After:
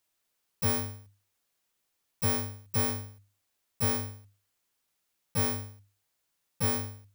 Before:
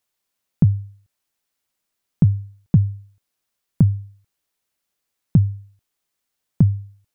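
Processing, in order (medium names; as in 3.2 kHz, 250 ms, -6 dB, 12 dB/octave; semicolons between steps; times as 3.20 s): bit-reversed sample order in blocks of 128 samples; slow attack 159 ms; hum notches 50/100/150/200/250 Hz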